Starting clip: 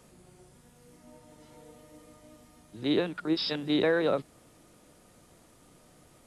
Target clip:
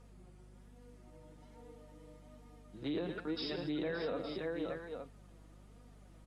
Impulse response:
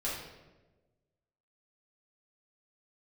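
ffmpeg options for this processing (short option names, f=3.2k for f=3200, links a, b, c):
-af "aemphasis=mode=reproduction:type=cd,aecho=1:1:109|190|573|868:0.282|0.158|0.376|0.251,flanger=delay=4.1:depth=2.2:regen=25:speed=1.2:shape=sinusoidal,alimiter=level_in=2.5dB:limit=-24dB:level=0:latency=1:release=53,volume=-2.5dB,aeval=exprs='val(0)+0.002*(sin(2*PI*50*n/s)+sin(2*PI*2*50*n/s)/2+sin(2*PI*3*50*n/s)/3+sin(2*PI*4*50*n/s)/4+sin(2*PI*5*50*n/s)/5)':c=same,volume=-3dB"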